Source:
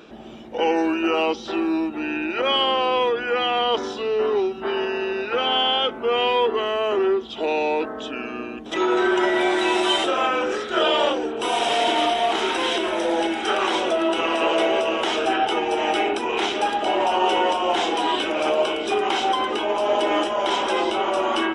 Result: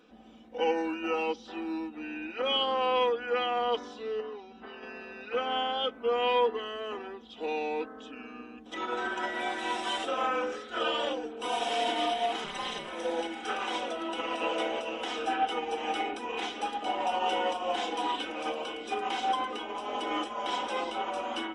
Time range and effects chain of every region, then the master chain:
4.20–4.83 s: brick-wall FIR low-pass 7.6 kHz + compression 5:1, threshold -23 dBFS
12.44–12.88 s: AM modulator 230 Hz, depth 95% + comb 5 ms, depth 98%
whole clip: comb 4 ms, depth 71%; upward expansion 1.5:1, over -27 dBFS; trim -9 dB

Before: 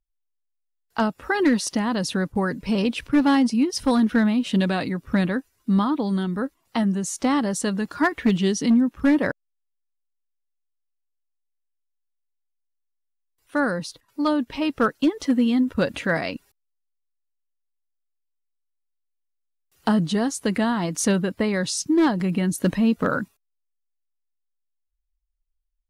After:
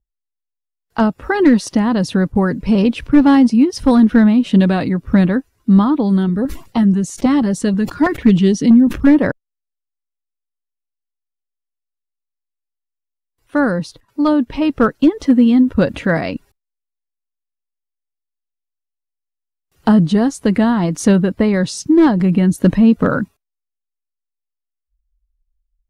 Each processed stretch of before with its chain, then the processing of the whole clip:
6.29–9.07 s: LFO notch saw up 6.2 Hz 430–1900 Hz + decay stretcher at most 140 dB/s
whole clip: spectral noise reduction 21 dB; tilt EQ -2 dB/octave; trim +5 dB

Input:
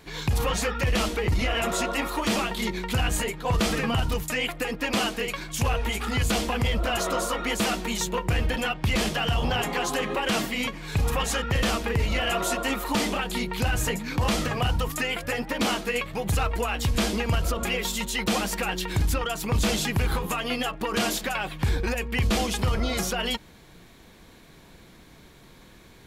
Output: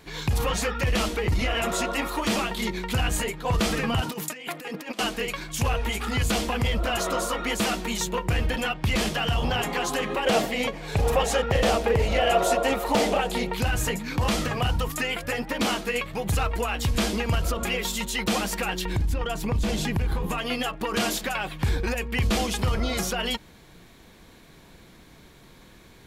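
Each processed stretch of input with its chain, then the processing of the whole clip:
4.01–4.99 s: high-pass 180 Hz 24 dB/octave + compressor with a negative ratio -33 dBFS, ratio -0.5
10.25–13.55 s: high-order bell 590 Hz +8.5 dB 1.2 oct + delay 757 ms -21 dB + loudspeaker Doppler distortion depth 0.11 ms
18.85–20.38 s: tilt EQ -1.5 dB/octave + compression 4:1, threshold -22 dBFS + band-stop 1.3 kHz, Q 11
whole clip: none

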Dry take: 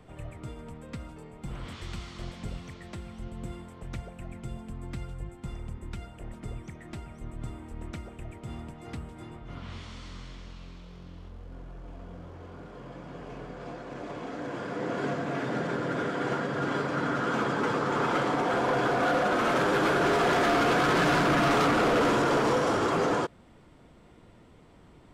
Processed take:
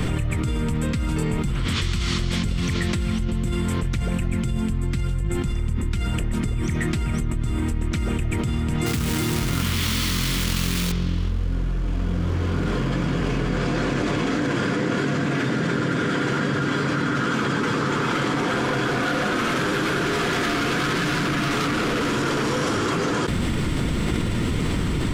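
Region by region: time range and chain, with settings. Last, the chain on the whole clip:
8.86–10.92 s: high-pass 110 Hz 6 dB/octave + companded quantiser 4-bit
whole clip: peaking EQ 700 Hz -13 dB 1.5 oct; level flattener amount 100%; trim +3.5 dB

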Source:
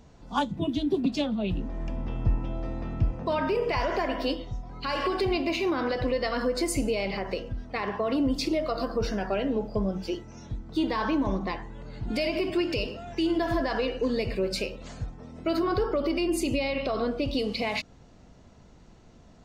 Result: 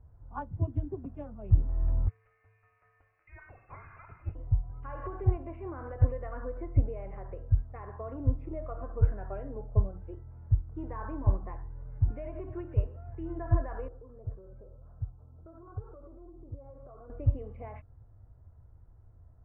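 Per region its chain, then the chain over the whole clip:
2.08–4.35 s: high-pass 910 Hz + frequency inversion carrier 3.1 kHz
13.88–17.10 s: Chebyshev low-pass 1.4 kHz, order 4 + flange 1.9 Hz, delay 5.4 ms, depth 4.9 ms, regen +57% + compression, threshold -33 dBFS
whole clip: inverse Chebyshev low-pass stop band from 3.9 kHz, stop band 50 dB; resonant low shelf 140 Hz +12 dB, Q 3; upward expansion 1.5:1, over -30 dBFS; trim -4 dB

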